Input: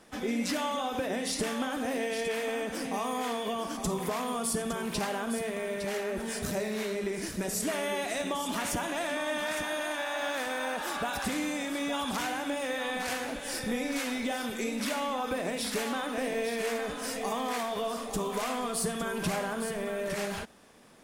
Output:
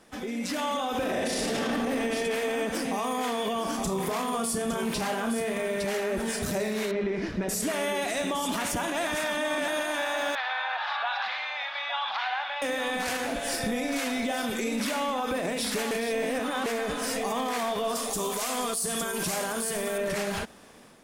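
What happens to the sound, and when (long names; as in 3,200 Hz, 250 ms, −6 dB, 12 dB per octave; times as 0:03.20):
0:00.94–0:01.62: thrown reverb, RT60 2.6 s, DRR −6.5 dB
0:03.63–0:05.62: double-tracking delay 31 ms −7 dB
0:06.91–0:07.49: high-frequency loss of the air 250 metres
0:09.07–0:09.68: reverse
0:10.35–0:12.62: elliptic band-pass filter 750–4,100 Hz
0:13.26–0:14.47: steady tone 690 Hz −41 dBFS
0:15.91–0:16.66: reverse
0:17.95–0:19.98: bass and treble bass −4 dB, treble +11 dB
whole clip: brickwall limiter −26.5 dBFS; automatic gain control gain up to 6 dB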